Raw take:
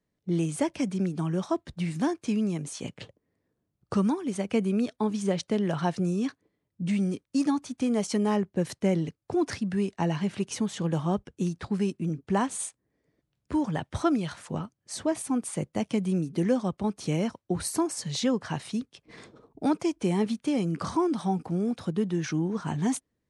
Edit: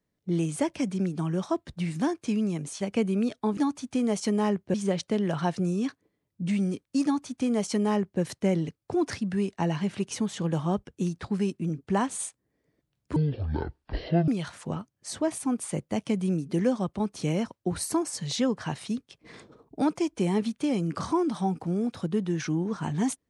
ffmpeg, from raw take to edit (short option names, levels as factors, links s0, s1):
-filter_complex "[0:a]asplit=6[s0][s1][s2][s3][s4][s5];[s0]atrim=end=2.812[s6];[s1]atrim=start=4.378:end=5.142[s7];[s2]atrim=start=7.438:end=8.612[s8];[s3]atrim=start=5.138:end=13.564[s9];[s4]atrim=start=13.56:end=14.12,asetpts=PTS-STARTPTS,asetrate=22050,aresample=44100[s10];[s5]atrim=start=14.116[s11];[s6][s7]acrossfade=d=0.004:c1=hsin:c2=hsin[s12];[s12][s8]acrossfade=d=0.004:c1=hsin:c2=hsin[s13];[s13][s9]acrossfade=d=0.004:c1=hsin:c2=hsin[s14];[s14][s10]acrossfade=d=0.004:c1=hsin:c2=hsin[s15];[s15][s11]acrossfade=d=0.004:c1=hsin:c2=hsin"